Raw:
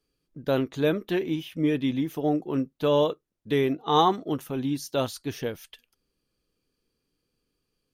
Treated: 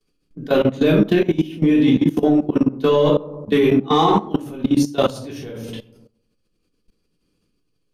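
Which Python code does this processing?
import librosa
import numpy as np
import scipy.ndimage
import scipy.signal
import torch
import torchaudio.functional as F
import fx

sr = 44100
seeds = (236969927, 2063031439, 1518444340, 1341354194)

p1 = scipy.signal.sosfilt(scipy.signal.butter(2, 11000.0, 'lowpass', fs=sr, output='sos'), x)
p2 = 10.0 ** (-20.5 / 20.0) * np.tanh(p1 / 10.0 ** (-20.5 / 20.0))
p3 = p1 + F.gain(torch.from_numpy(p2), -5.0).numpy()
p4 = fx.high_shelf(p3, sr, hz=3500.0, db=2.0)
p5 = p4 + fx.echo_bbd(p4, sr, ms=135, stages=1024, feedback_pct=38, wet_db=-13.0, dry=0)
p6 = fx.room_shoebox(p5, sr, seeds[0], volume_m3=500.0, walls='furnished', distance_m=3.4)
p7 = fx.level_steps(p6, sr, step_db=18)
p8 = fx.peak_eq(p7, sr, hz=210.0, db=7.0, octaves=0.37)
y = F.gain(torch.from_numpy(p8), 3.5).numpy()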